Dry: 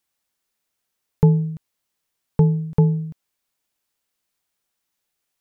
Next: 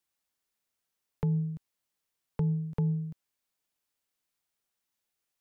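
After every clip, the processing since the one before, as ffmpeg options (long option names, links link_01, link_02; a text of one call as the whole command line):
ffmpeg -i in.wav -filter_complex "[0:a]acrossover=split=200[link_01][link_02];[link_01]alimiter=limit=-18dB:level=0:latency=1[link_03];[link_02]acompressor=threshold=-32dB:ratio=6[link_04];[link_03][link_04]amix=inputs=2:normalize=0,volume=-6.5dB" out.wav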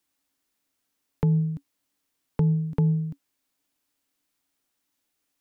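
ffmpeg -i in.wav -af "equalizer=frequency=280:width=5.7:gain=14,volume=6dB" out.wav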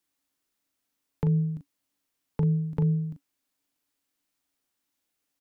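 ffmpeg -i in.wav -filter_complex "[0:a]asplit=2[link_01][link_02];[link_02]adelay=39,volume=-8dB[link_03];[link_01][link_03]amix=inputs=2:normalize=0,volume=-3.5dB" out.wav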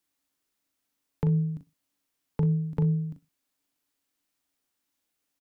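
ffmpeg -i in.wav -af "aecho=1:1:61|122:0.1|0.025" out.wav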